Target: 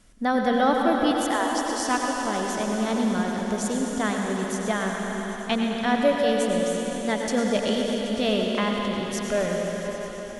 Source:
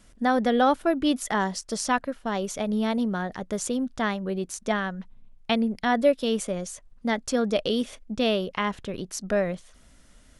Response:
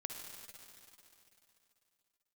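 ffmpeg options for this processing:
-filter_complex "[0:a]asettb=1/sr,asplit=3[s0][s1][s2];[s0]atrim=end=1.114[s3];[s1]atrim=start=1.11:end=1.8,asetpts=PTS-STARTPTS,afade=t=in:d=0.004:c=qsin,afade=t=out:st=0.686:d=0.004:c=qsin,highpass=f=490:w=0.5412,highpass=f=490:w=1.3066[s4];[s2]atrim=start=1.796[s5];[s3][s4]acrossfade=d=0.004:c1=hsin:c2=qsin[s6];[s6][s5]acrossfade=d=0.004:c1=qsin:c2=hsin[s7];[1:a]atrim=start_sample=2205,asetrate=25137,aresample=44100[s8];[s7][s8]afir=irnorm=-1:irlink=0"

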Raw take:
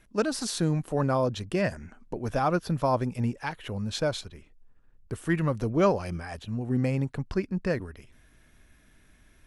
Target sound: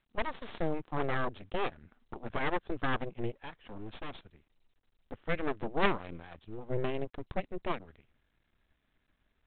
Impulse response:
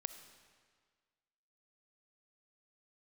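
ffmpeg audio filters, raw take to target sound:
-filter_complex "[0:a]aeval=exprs='0.355*(cos(1*acos(clip(val(0)/0.355,-1,1)))-cos(1*PI/2))+0.141*(cos(3*acos(clip(val(0)/0.355,-1,1)))-cos(3*PI/2))+0.0316*(cos(4*acos(clip(val(0)/0.355,-1,1)))-cos(4*PI/2))+0.0251*(cos(8*acos(clip(val(0)/0.355,-1,1)))-cos(8*PI/2))':c=same,asettb=1/sr,asplit=3[s0][s1][s2];[s0]atrim=end=3.344[s3];[s1]atrim=start=3.34:end=4.13,asetpts=PTS-STARTPTS,afade=t=in:d=0.004:c=qsin,afade=t=out:st=0.786:d=0.004:c=qsin,volume=50.1,asoftclip=hard,volume=0.02[s4];[s2]atrim=start=4.126[s5];[s3][s4]acrossfade=d=0.004:c1=hsin:c2=qsin[s6];[s6][s5]acrossfade=d=0.004:c1=qsin:c2=hsin" -ar 8000 -c:a adpcm_g726 -b:a 32k

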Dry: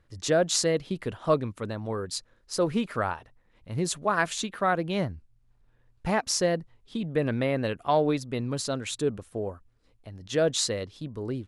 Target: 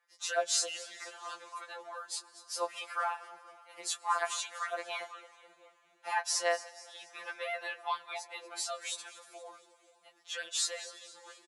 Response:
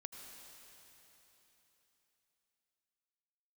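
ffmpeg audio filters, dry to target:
-filter_complex "[0:a]highpass=f=760:w=0.5412,highpass=f=760:w=1.3066,equalizer=f=4200:w=1.5:g=-2.5,asplit=5[s0][s1][s2][s3][s4];[s1]adelay=236,afreqshift=-54,volume=0.141[s5];[s2]adelay=472,afreqshift=-108,volume=0.0724[s6];[s3]adelay=708,afreqshift=-162,volume=0.0367[s7];[s4]adelay=944,afreqshift=-216,volume=0.0188[s8];[s0][s5][s6][s7][s8]amix=inputs=5:normalize=0,asplit=2[s9][s10];[1:a]atrim=start_sample=2205,adelay=25[s11];[s10][s11]afir=irnorm=-1:irlink=0,volume=0.251[s12];[s9][s12]amix=inputs=2:normalize=0,afftfilt=real='re*2.83*eq(mod(b,8),0)':imag='im*2.83*eq(mod(b,8),0)':win_size=2048:overlap=0.75"

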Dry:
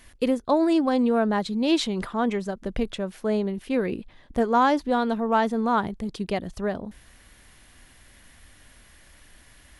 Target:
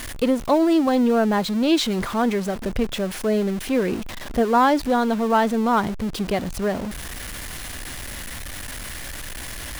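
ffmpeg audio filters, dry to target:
-af "aeval=exprs='val(0)+0.5*0.0316*sgn(val(0))':c=same,volume=1.26"

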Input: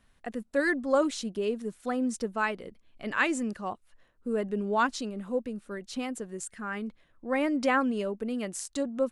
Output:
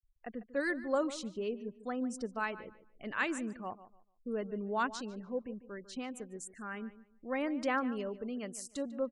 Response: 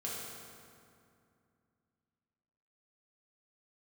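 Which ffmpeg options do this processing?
-filter_complex "[0:a]afftfilt=real='re*gte(hypot(re,im),0.00447)':imag='im*gte(hypot(re,im),0.00447)':win_size=1024:overlap=0.75,asplit=2[s0][s1];[s1]adelay=147,lowpass=f=3100:p=1,volume=0.178,asplit=2[s2][s3];[s3]adelay=147,lowpass=f=3100:p=1,volume=0.25,asplit=2[s4][s5];[s5]adelay=147,lowpass=f=3100:p=1,volume=0.25[s6];[s2][s4][s6]amix=inputs=3:normalize=0[s7];[s0][s7]amix=inputs=2:normalize=0,volume=0.447"

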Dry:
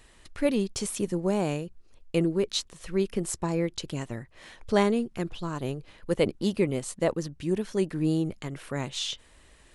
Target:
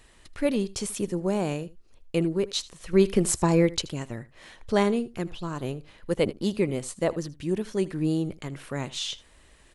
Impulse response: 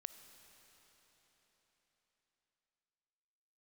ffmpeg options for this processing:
-filter_complex "[0:a]asettb=1/sr,asplit=3[s0][s1][s2];[s0]atrim=end=2.934[s3];[s1]atrim=start=2.93:end=3.82,asetpts=PTS-STARTPTS,afade=t=in:d=0.004:c=qsin,afade=t=out:st=0.886:d=0.004:c=qsin,acontrast=86[s4];[s2]atrim=start=3.816[s5];[s3][s4]acrossfade=d=0.004:c1=hsin:c2=qsin[s6];[s6][s5]acrossfade=d=0.004:c1=qsin:c2=hsin,aecho=1:1:79:0.106"

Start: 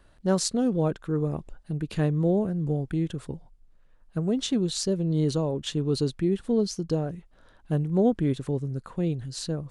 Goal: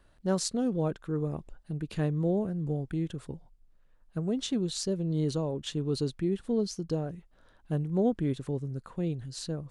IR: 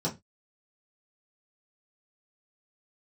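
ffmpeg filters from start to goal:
-af "volume=0.596"

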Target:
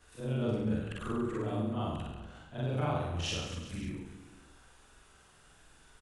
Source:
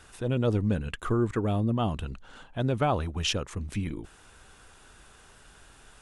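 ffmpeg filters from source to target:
-af "afftfilt=real='re':imag='-im':win_size=4096:overlap=0.75,aecho=1:1:60|138|239.4|371.2|542.6:0.631|0.398|0.251|0.158|0.1,volume=0.631"

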